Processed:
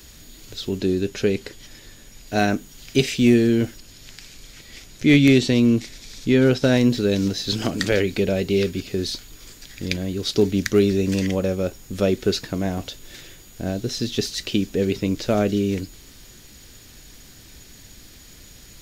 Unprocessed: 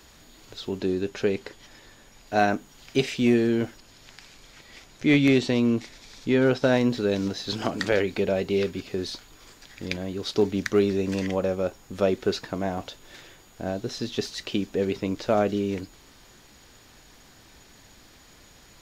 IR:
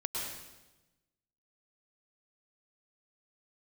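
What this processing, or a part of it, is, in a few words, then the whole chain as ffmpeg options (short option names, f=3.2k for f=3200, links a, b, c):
smiley-face EQ: -af "lowshelf=f=110:g=5.5,equalizer=f=920:t=o:w=1.5:g=-9,highshelf=f=7.7k:g=8,volume=5.5dB"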